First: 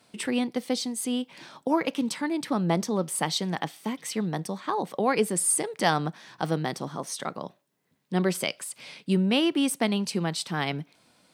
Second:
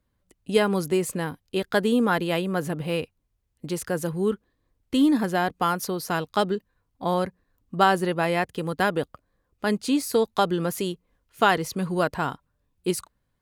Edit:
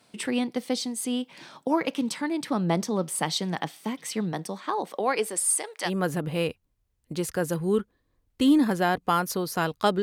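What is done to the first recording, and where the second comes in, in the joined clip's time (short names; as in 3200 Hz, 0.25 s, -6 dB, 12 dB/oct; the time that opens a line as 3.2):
first
4.32–5.9 HPF 160 Hz -> 840 Hz
5.87 switch to second from 2.4 s, crossfade 0.06 s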